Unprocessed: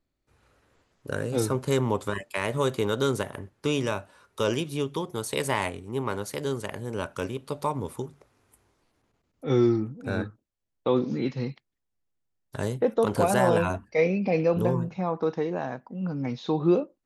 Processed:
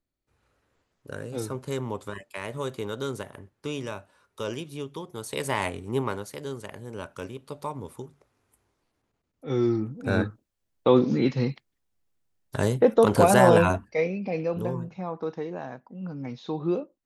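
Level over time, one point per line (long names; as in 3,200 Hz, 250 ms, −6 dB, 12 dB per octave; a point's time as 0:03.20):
0:05.07 −6.5 dB
0:05.94 +4 dB
0:06.30 −5.5 dB
0:09.45 −5.5 dB
0:10.15 +5 dB
0:13.70 +5 dB
0:14.10 −5 dB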